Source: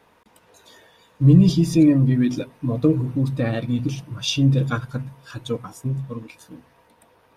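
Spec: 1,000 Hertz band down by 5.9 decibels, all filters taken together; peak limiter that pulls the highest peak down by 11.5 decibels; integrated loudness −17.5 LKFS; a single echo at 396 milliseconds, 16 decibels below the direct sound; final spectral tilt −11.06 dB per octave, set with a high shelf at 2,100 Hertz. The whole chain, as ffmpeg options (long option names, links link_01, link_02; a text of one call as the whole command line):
ffmpeg -i in.wav -af "equalizer=frequency=1000:width_type=o:gain=-6,highshelf=frequency=2100:gain=-8,alimiter=limit=-15dB:level=0:latency=1,aecho=1:1:396:0.158,volume=7.5dB" out.wav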